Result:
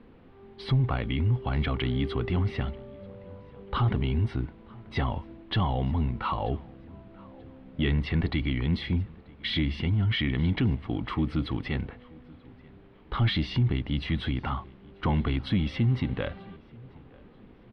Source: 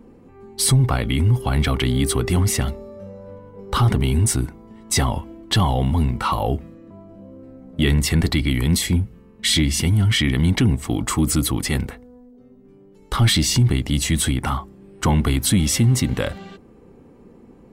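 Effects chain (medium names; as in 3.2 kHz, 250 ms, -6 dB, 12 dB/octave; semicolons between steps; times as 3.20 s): added noise pink -49 dBFS; inverse Chebyshev low-pass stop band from 6.7 kHz, stop band 40 dB; on a send: feedback delay 936 ms, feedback 39%, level -23.5 dB; on the sum: tape noise reduction on one side only decoder only; trim -8 dB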